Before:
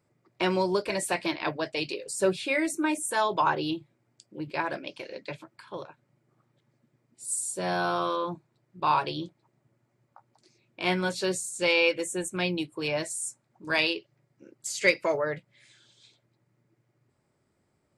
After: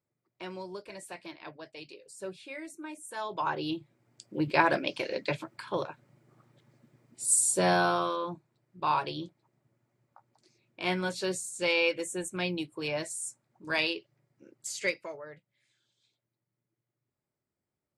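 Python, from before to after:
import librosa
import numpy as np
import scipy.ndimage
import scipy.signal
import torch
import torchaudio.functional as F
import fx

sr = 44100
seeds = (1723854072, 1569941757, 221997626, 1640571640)

y = fx.gain(x, sr, db=fx.line((2.96, -15.0), (3.58, -4.5), (4.38, 6.5), (7.58, 6.5), (8.15, -3.5), (14.73, -3.5), (15.15, -16.0)))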